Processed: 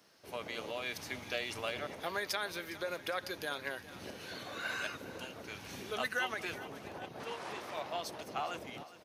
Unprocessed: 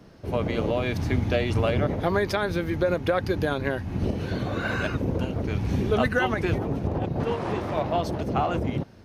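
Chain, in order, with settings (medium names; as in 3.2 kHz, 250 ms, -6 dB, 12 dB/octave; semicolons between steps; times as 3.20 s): high-pass 1.5 kHz 6 dB/octave; treble shelf 4.8 kHz +8.5 dB; feedback delay 409 ms, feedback 55%, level -16 dB; trim -6 dB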